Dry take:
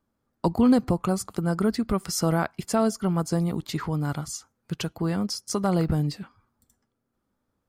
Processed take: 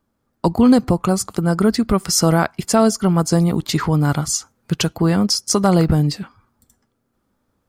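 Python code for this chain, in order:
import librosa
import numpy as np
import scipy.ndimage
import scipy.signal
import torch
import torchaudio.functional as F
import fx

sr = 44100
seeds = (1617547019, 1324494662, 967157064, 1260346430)

p1 = fx.dynamic_eq(x, sr, hz=6200.0, q=0.94, threshold_db=-44.0, ratio=4.0, max_db=4)
p2 = fx.rider(p1, sr, range_db=10, speed_s=2.0)
p3 = p1 + (p2 * 10.0 ** (2.5 / 20.0))
y = p3 * 10.0 ** (1.0 / 20.0)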